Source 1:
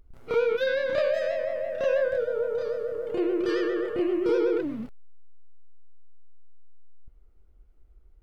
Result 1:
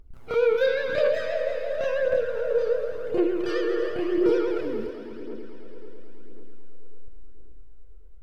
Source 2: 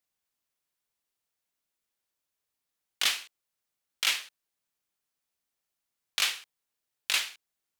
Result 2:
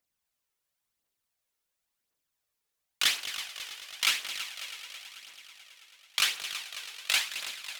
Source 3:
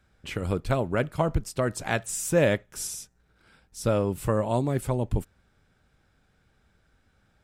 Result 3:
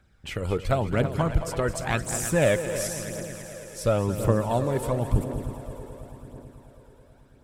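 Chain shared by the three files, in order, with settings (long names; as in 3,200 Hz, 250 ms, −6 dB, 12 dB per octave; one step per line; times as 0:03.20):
echo machine with several playback heads 109 ms, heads second and third, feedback 68%, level −12 dB
phase shifter 0.94 Hz, delay 2.4 ms, feedback 41%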